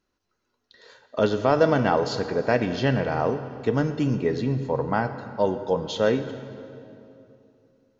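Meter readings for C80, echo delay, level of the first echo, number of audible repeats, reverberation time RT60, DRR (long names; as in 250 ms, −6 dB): 11.5 dB, no echo audible, no echo audible, no echo audible, 2.8 s, 10.0 dB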